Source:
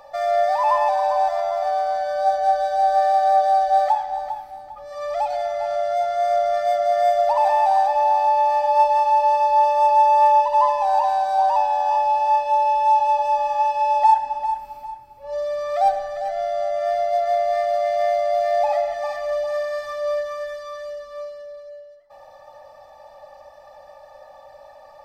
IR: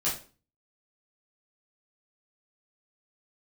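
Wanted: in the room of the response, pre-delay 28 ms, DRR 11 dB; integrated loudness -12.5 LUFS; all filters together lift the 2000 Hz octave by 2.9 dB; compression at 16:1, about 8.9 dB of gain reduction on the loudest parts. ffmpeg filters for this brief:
-filter_complex "[0:a]equalizer=f=2k:t=o:g=3.5,acompressor=threshold=-19dB:ratio=16,asplit=2[a][b];[1:a]atrim=start_sample=2205,adelay=28[c];[b][c]afir=irnorm=-1:irlink=0,volume=-18.5dB[d];[a][d]amix=inputs=2:normalize=0,volume=11dB"

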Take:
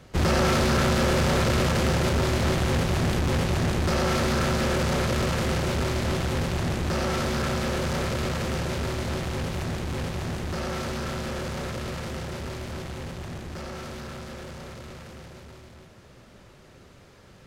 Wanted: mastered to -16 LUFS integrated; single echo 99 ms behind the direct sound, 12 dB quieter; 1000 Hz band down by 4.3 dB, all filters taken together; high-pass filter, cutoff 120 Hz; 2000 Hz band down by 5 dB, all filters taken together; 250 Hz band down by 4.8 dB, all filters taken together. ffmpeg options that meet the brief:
-af "highpass=120,equalizer=f=250:t=o:g=-6,equalizer=f=1k:t=o:g=-4,equalizer=f=2k:t=o:g=-5,aecho=1:1:99:0.251,volume=13.5dB"

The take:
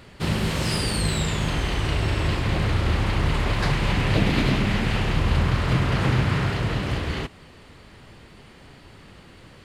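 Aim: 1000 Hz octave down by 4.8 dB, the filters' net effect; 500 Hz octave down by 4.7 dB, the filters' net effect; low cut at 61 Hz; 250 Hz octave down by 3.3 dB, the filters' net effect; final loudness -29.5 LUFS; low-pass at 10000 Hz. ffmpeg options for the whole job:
-af "highpass=61,lowpass=10k,equalizer=f=250:t=o:g=-4,equalizer=f=500:t=o:g=-3.5,equalizer=f=1k:t=o:g=-5,volume=-4dB"

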